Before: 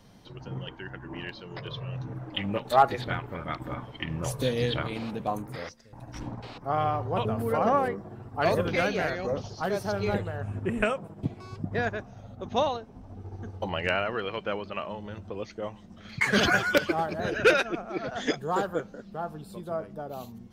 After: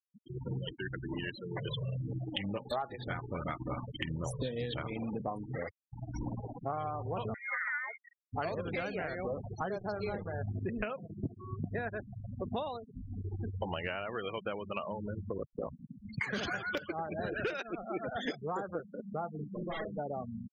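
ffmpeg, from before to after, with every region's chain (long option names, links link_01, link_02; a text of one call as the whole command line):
ffmpeg -i in.wav -filter_complex "[0:a]asettb=1/sr,asplit=3[link_01][link_02][link_03];[link_01]atrim=end=7.344[link_04];[link_02]atrim=start=7.34:end=8.33,asetpts=PTS-STARTPTS,afade=type=in:duration=0.004:curve=qsin,afade=type=out:start_time=0.986:duration=0.004:curve=qsin,highpass=730,lowpass=frequency=2200:width_type=q:width=0.5098,lowpass=frequency=2200:width_type=q:width=0.6013,lowpass=frequency=2200:width_type=q:width=0.9,lowpass=frequency=2200:width_type=q:width=2.563,afreqshift=-2600[link_05];[link_03]atrim=start=8.326[link_06];[link_04][link_05]acrossfade=duration=0.004:curve1=hsin:curve2=qsin[link_07];[link_07][link_06]acrossfade=duration=0.004:curve1=qsin:curve2=hsin,asettb=1/sr,asplit=3[link_08][link_09][link_10];[link_08]atrim=end=9.744[link_11];[link_09]atrim=start=9.74:end=10.35,asetpts=PTS-STARTPTS,afade=type=in:duration=0.004:curve=qsin,afade=type=out:start_time=0.606:duration=0.004:curve=qsin,bandreject=frequency=50:width_type=h:width=6,bandreject=frequency=100:width_type=h:width=6,bandreject=frequency=150:width_type=h:width=6,bandreject=frequency=200:width_type=h:width=6,bandreject=frequency=250:width_type=h:width=6,bandreject=frequency=300:width_type=h:width=6,bandreject=frequency=350:width_type=h:width=6,acrusher=bits=7:dc=4:mix=0:aa=0.000001[link_12];[link_10]atrim=start=10.346[link_13];[link_11][link_12]acrossfade=duration=0.004:curve1=hsin:curve2=qsin[link_14];[link_14][link_13]acrossfade=duration=0.004:curve1=qsin:curve2=hsin,asettb=1/sr,asplit=3[link_15][link_16][link_17];[link_15]atrim=end=15.374[link_18];[link_16]atrim=start=15.37:end=16.03,asetpts=PTS-STARTPTS,afade=type=in:duration=0.004:curve=qsin,afade=type=out:start_time=0.656:duration=0.004:curve=qsin,lowshelf=frequency=220:gain=2.5,acompressor=mode=upward:threshold=-41dB:ratio=2.5:attack=3.2:release=140:knee=2.83:detection=peak,aeval=exprs='val(0)*sin(2*PI*31*n/s)':channel_layout=same[link_19];[link_17]atrim=start=16.026[link_20];[link_18][link_19]acrossfade=duration=0.004:curve1=hsin:curve2=qsin[link_21];[link_21][link_20]acrossfade=duration=0.004:curve1=qsin:curve2=hsin,asettb=1/sr,asplit=3[link_22][link_23][link_24];[link_22]atrim=end=19.354[link_25];[link_23]atrim=start=19.35:end=19.99,asetpts=PTS-STARTPTS,afade=type=in:duration=0.004:curve=qsin,afade=type=out:start_time=0.636:duration=0.004:curve=qsin,lowshelf=frequency=140:gain=-3,aeval=exprs='0.0188*(abs(mod(val(0)/0.0188+3,4)-2)-1)':channel_layout=same,asplit=2[link_26][link_27];[link_27]adelay=41,volume=-3dB[link_28];[link_26][link_28]amix=inputs=2:normalize=0,atrim=end_sample=28224[link_29];[link_24]atrim=start=19.986[link_30];[link_25][link_29]acrossfade=duration=0.004:curve1=hsin:curve2=qsin[link_31];[link_31][link_30]acrossfade=duration=0.004:curve1=qsin:curve2=hsin,afftfilt=real='re*gte(hypot(re,im),0.0224)':imag='im*gte(hypot(re,im),0.0224)':win_size=1024:overlap=0.75,acompressor=threshold=-36dB:ratio=10,volume=3dB" out.wav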